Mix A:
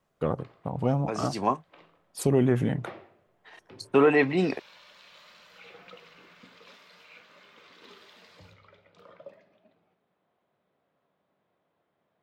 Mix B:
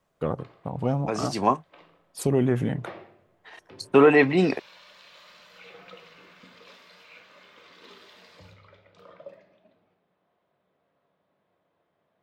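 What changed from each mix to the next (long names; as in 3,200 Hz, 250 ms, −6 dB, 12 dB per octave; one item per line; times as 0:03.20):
second voice +4.0 dB
background: send +10.0 dB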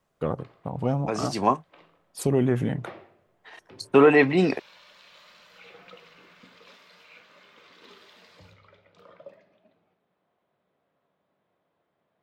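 background: send −6.5 dB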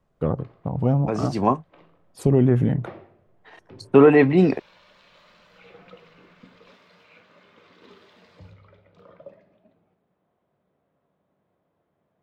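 master: add spectral tilt −2.5 dB per octave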